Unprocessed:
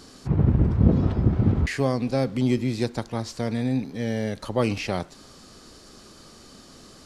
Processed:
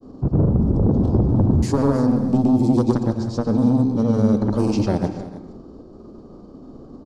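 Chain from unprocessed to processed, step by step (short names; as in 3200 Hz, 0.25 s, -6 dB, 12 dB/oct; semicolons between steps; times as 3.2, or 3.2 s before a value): low-pass opened by the level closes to 1400 Hz, open at -18.5 dBFS; expander -46 dBFS; EQ curve 180 Hz 0 dB, 280 Hz +4 dB, 1100 Hz -7 dB, 1900 Hz -26 dB, 4600 Hz -8 dB, 6900 Hz -3 dB; compressor 6:1, threshold -21 dBFS, peak gain reduction 11 dB; sine folder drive 8 dB, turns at -11.5 dBFS; grains, pitch spread up and down by 0 st; tapped delay 0.287/0.317 s -19.5/-16 dB; on a send at -8 dB: reverb RT60 0.55 s, pre-delay 0.112 s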